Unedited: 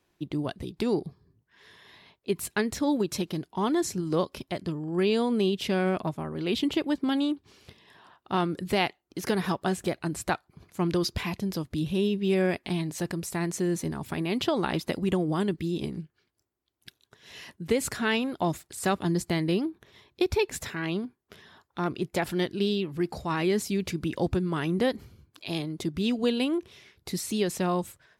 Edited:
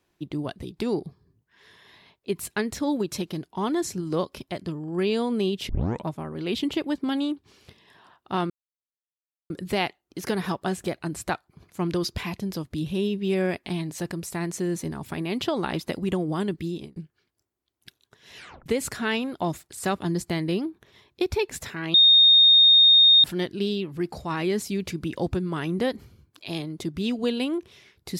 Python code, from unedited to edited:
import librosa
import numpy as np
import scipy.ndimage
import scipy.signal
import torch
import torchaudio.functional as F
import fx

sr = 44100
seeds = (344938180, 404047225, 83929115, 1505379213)

y = fx.edit(x, sr, fx.tape_start(start_s=5.69, length_s=0.36),
    fx.insert_silence(at_s=8.5, length_s=1.0),
    fx.fade_out_span(start_s=15.68, length_s=0.28),
    fx.tape_stop(start_s=17.37, length_s=0.29),
    fx.bleep(start_s=20.94, length_s=1.3, hz=3690.0, db=-11.5), tone=tone)